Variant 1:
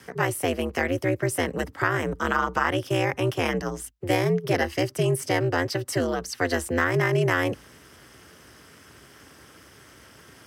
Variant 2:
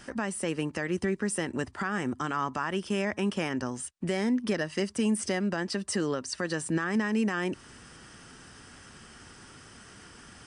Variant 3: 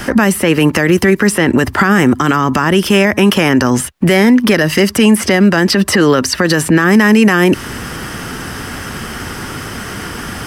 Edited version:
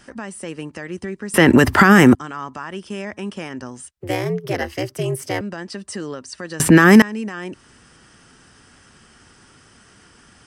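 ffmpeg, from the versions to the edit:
-filter_complex "[2:a]asplit=2[s0][s1];[1:a]asplit=4[s2][s3][s4][s5];[s2]atrim=end=1.342[s6];[s0]atrim=start=1.338:end=2.152[s7];[s3]atrim=start=2.148:end=3.972[s8];[0:a]atrim=start=3.968:end=5.412[s9];[s4]atrim=start=5.408:end=6.602[s10];[s1]atrim=start=6.598:end=7.022[s11];[s5]atrim=start=7.018[s12];[s6][s7]acrossfade=d=0.004:c1=hsin:c2=hsin[s13];[s13][s8]acrossfade=d=0.004:c1=hsin:c2=hsin[s14];[s14][s9]acrossfade=d=0.004:c1=hsin:c2=hsin[s15];[s15][s10]acrossfade=d=0.004:c1=hsin:c2=hsin[s16];[s16][s11]acrossfade=d=0.004:c1=hsin:c2=hsin[s17];[s17][s12]acrossfade=d=0.004:c1=hsin:c2=hsin"

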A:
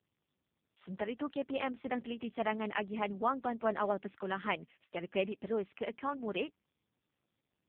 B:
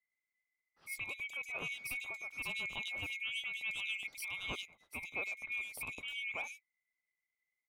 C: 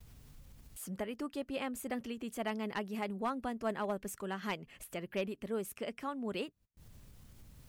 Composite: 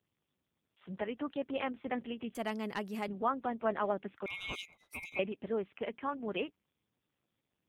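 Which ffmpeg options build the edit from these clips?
-filter_complex "[0:a]asplit=3[s0][s1][s2];[s0]atrim=end=2.352[s3];[2:a]atrim=start=2.348:end=3.082[s4];[s1]atrim=start=3.078:end=4.262[s5];[1:a]atrim=start=4.258:end=5.192[s6];[s2]atrim=start=5.188[s7];[s3][s4]acrossfade=d=0.004:c1=hsin:c2=hsin[s8];[s8][s5]acrossfade=d=0.004:c1=hsin:c2=hsin[s9];[s9][s6]acrossfade=d=0.004:c1=hsin:c2=hsin[s10];[s10][s7]acrossfade=d=0.004:c1=hsin:c2=hsin"

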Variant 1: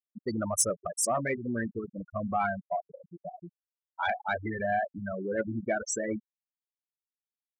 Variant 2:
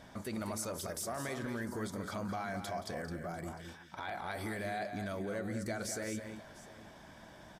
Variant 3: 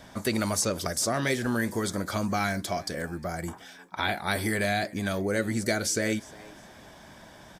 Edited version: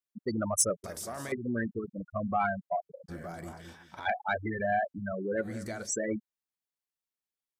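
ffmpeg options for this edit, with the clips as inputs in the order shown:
-filter_complex "[1:a]asplit=3[s0][s1][s2];[0:a]asplit=4[s3][s4][s5][s6];[s3]atrim=end=0.842[s7];[s0]atrim=start=0.838:end=1.322[s8];[s4]atrim=start=1.318:end=3.1[s9];[s1]atrim=start=3.08:end=4.07[s10];[s5]atrim=start=4.05:end=5.52[s11];[s2]atrim=start=5.36:end=5.93[s12];[s6]atrim=start=5.77[s13];[s7][s8]acrossfade=d=0.004:c1=hsin:c2=hsin[s14];[s14][s9]acrossfade=d=0.004:c1=hsin:c2=hsin[s15];[s15][s10]acrossfade=d=0.02:c1=tri:c2=tri[s16];[s16][s11]acrossfade=d=0.02:c1=tri:c2=tri[s17];[s17][s12]acrossfade=d=0.16:c1=tri:c2=tri[s18];[s18][s13]acrossfade=d=0.16:c1=tri:c2=tri"

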